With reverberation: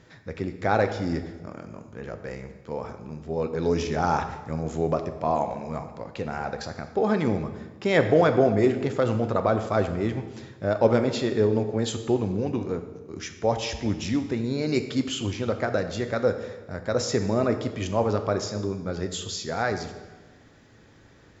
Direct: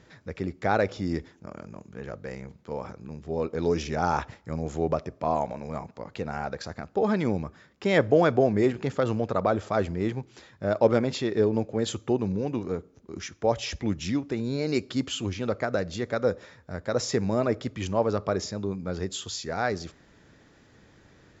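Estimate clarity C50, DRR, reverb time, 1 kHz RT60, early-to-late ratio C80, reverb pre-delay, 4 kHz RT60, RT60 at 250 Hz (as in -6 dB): 10.0 dB, 7.0 dB, 1.3 s, 1.2 s, 11.0 dB, 5 ms, 1.0 s, 1.4 s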